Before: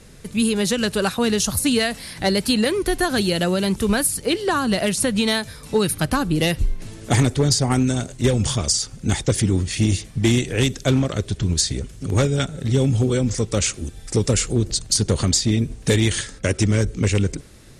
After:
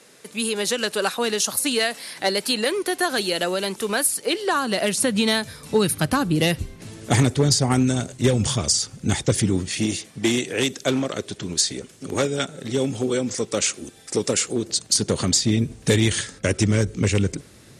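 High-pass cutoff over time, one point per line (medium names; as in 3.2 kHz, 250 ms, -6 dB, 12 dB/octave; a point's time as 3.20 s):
4.54 s 380 Hz
5.51 s 92 Hz
9.33 s 92 Hz
9.98 s 260 Hz
14.64 s 260 Hz
15.64 s 90 Hz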